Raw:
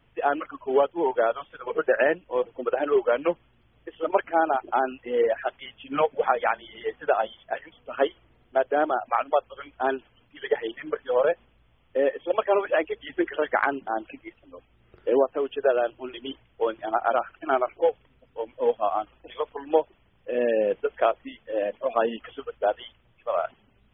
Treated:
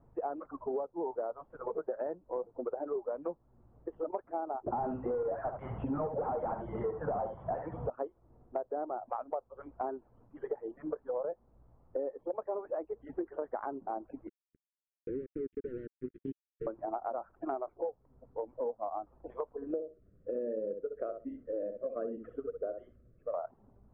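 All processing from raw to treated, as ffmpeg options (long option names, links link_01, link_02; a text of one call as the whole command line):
ffmpeg -i in.wav -filter_complex "[0:a]asettb=1/sr,asplit=3[link_01][link_02][link_03];[link_01]atrim=end=4.664[link_04];[link_02]atrim=start=4.66:end=7.9,asetpts=PTS-STARTPTS,afade=type=in:duration=0.004:curve=qsin,afade=type=out:start_time=3.236:duration=0.004:curve=qsin,lowshelf=frequency=190:width_type=q:width=1.5:gain=13.5,asplit=2[link_05][link_06];[link_06]highpass=frequency=720:poles=1,volume=36dB,asoftclip=type=tanh:threshold=-7dB[link_07];[link_05][link_07]amix=inputs=2:normalize=0,lowpass=frequency=1100:poles=1,volume=-6dB,aecho=1:1:71:0.335,atrim=end_sample=142884[link_08];[link_03]atrim=start=7.896[link_09];[link_04][link_08]acrossfade=duration=0.004:curve1=hsin:curve2=qsin[link_10];[link_10][link_09]acrossfade=duration=0.004:curve1=qsin:curve2=hsin,asettb=1/sr,asplit=3[link_11][link_12][link_13];[link_11]atrim=end=14.274[link_14];[link_12]atrim=start=14.27:end=16.67,asetpts=PTS-STARTPTS,afade=type=in:duration=0.004:curve=qsin,afade=type=out:start_time=2.396:duration=0.004:curve=qsin,acompressor=threshold=-25dB:ratio=12:attack=3.2:release=140:knee=1:detection=peak,acrusher=bits=4:mix=0:aa=0.5,asuperstop=centerf=830:order=8:qfactor=0.61[link_15];[link_13]atrim=start=16.666[link_16];[link_14][link_15]acrossfade=duration=0.004:curve1=hsin:curve2=qsin[link_17];[link_17][link_16]acrossfade=duration=0.004:curve1=qsin:curve2=hsin,asettb=1/sr,asplit=3[link_18][link_19][link_20];[link_18]atrim=end=19.554[link_21];[link_19]atrim=start=19.55:end=23.34,asetpts=PTS-STARTPTS,afade=type=in:duration=0.004:curve=qsin,afade=type=out:start_time=3.786:duration=0.004:curve=qsin,asuperstop=centerf=880:order=4:qfactor=1.1,asplit=2[link_22][link_23];[link_23]adelay=63,lowpass=frequency=1100:poles=1,volume=-7dB,asplit=2[link_24][link_25];[link_25]adelay=63,lowpass=frequency=1100:poles=1,volume=0.15,asplit=2[link_26][link_27];[link_27]adelay=63,lowpass=frequency=1100:poles=1,volume=0.15[link_28];[link_22][link_24][link_26][link_28]amix=inputs=4:normalize=0,atrim=end_sample=167139[link_29];[link_20]atrim=start=23.336[link_30];[link_21][link_29]acrossfade=duration=0.004:curve1=hsin:curve2=qsin[link_31];[link_31][link_30]acrossfade=duration=0.004:curve1=qsin:curve2=hsin,lowpass=frequency=1000:width=0.5412,lowpass=frequency=1000:width=1.3066,acompressor=threshold=-35dB:ratio=6,volume=1dB" out.wav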